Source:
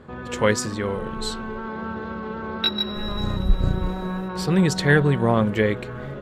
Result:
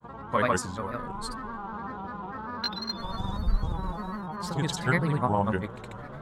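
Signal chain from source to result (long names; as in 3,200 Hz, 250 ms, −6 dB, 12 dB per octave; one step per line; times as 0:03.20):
graphic EQ with 15 bands 400 Hz −5 dB, 1,000 Hz +9 dB, 2,500 Hz −6 dB, 10,000 Hz +6 dB
granular cloud, pitch spread up and down by 3 semitones
level −6.5 dB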